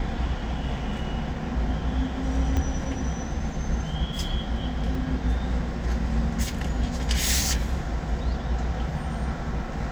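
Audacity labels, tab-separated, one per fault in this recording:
2.570000	2.570000	pop -15 dBFS
4.950000	4.950000	dropout 2.4 ms

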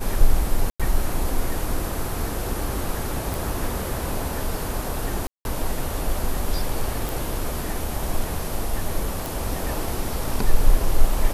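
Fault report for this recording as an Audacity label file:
0.700000	0.800000	dropout 96 ms
3.340000	3.340000	pop
5.270000	5.450000	dropout 181 ms
7.090000	7.090000	pop
9.260000	9.260000	pop

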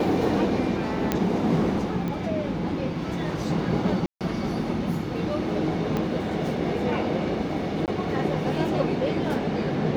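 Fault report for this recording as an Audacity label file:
1.120000	1.120000	pop -8 dBFS
2.080000	2.080000	pop -19 dBFS
4.060000	4.210000	dropout 147 ms
5.970000	5.970000	pop -14 dBFS
7.860000	7.880000	dropout 18 ms

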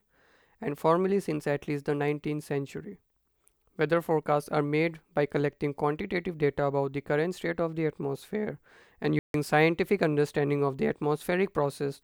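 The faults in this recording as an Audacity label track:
9.190000	9.340000	dropout 152 ms

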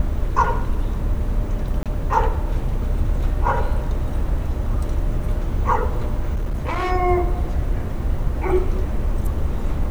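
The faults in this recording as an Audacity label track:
1.830000	1.860000	dropout 27 ms
6.350000	6.920000	clipped -19 dBFS

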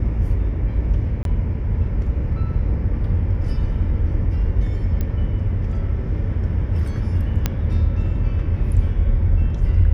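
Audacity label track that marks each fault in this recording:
1.230000	1.250000	dropout 22 ms
5.010000	5.010000	pop -13 dBFS
7.460000	7.460000	pop -5 dBFS

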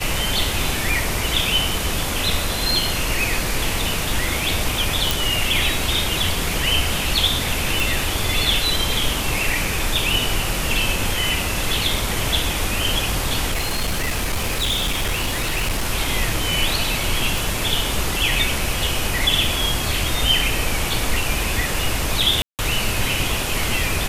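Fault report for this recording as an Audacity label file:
5.110000	5.110000	pop
7.800000	7.800000	pop
13.500000	15.860000	clipped -17.5 dBFS
17.380000	17.380000	pop
22.420000	22.590000	dropout 168 ms

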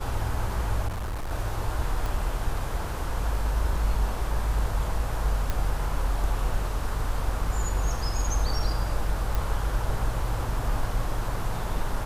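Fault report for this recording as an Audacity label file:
0.870000	1.320000	clipped -28 dBFS
2.060000	2.060000	pop
5.500000	5.500000	pop -13 dBFS
9.350000	9.350000	pop

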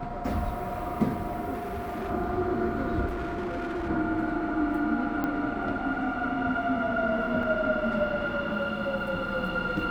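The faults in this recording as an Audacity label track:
1.530000	2.110000	clipped -30 dBFS
3.060000	3.890000	clipped -28.5 dBFS
5.240000	5.240000	pop -18 dBFS
7.430000	7.430000	dropout 3 ms

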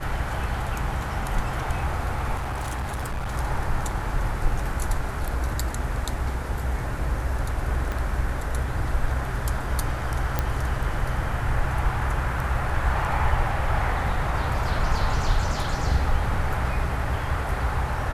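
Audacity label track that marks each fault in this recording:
2.360000	3.350000	clipped -25 dBFS
7.920000	7.920000	pop
10.390000	10.390000	pop -9 dBFS

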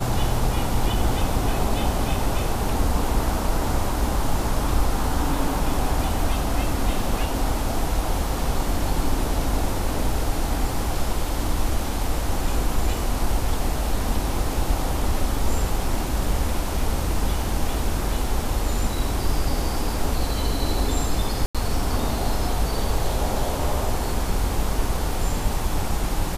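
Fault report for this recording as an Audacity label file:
21.460000	21.550000	dropout 86 ms

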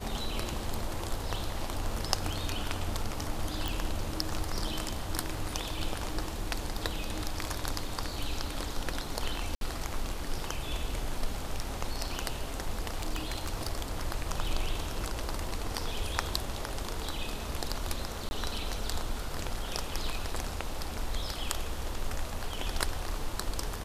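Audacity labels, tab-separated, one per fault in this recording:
3.680000	3.680000	pop
9.550000	9.610000	dropout 62 ms
12.790000	13.690000	clipped -25 dBFS
18.290000	18.310000	dropout 21 ms

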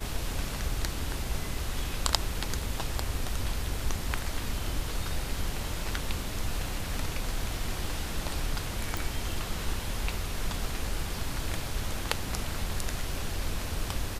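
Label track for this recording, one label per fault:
8.970000	8.970000	pop

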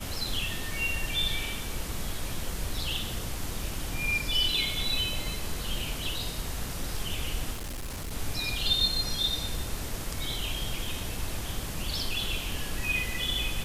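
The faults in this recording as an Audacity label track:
7.530000	8.120000	clipped -32.5 dBFS

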